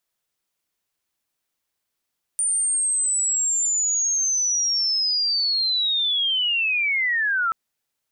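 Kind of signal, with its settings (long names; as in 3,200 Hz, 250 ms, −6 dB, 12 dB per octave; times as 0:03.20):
glide linear 9,100 Hz → 1,300 Hz −19 dBFS → −19 dBFS 5.13 s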